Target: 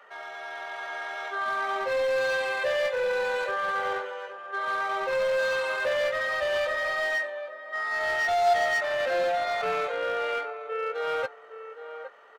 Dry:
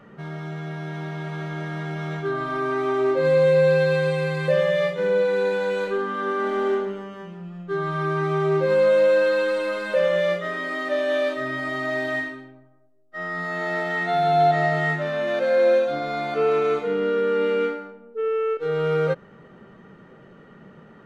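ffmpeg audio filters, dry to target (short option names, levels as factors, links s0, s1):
-filter_complex "[0:a]highpass=f=610:w=0.5412,highpass=f=610:w=1.3066,atempo=1.7,asplit=2[s0][s1];[s1]adelay=14,volume=0.224[s2];[s0][s2]amix=inputs=2:normalize=0,asplit=2[s3][s4];[s4]adelay=815,lowpass=f=1300:p=1,volume=0.316,asplit=2[s5][s6];[s6]adelay=815,lowpass=f=1300:p=1,volume=0.23,asplit=2[s7][s8];[s8]adelay=815,lowpass=f=1300:p=1,volume=0.23[s9];[s3][s5][s7][s9]amix=inputs=4:normalize=0,asplit=2[s10][s11];[s11]aeval=exprs='0.0501*(abs(mod(val(0)/0.0501+3,4)-2)-1)':c=same,volume=0.596[s12];[s10][s12]amix=inputs=2:normalize=0,volume=0.75"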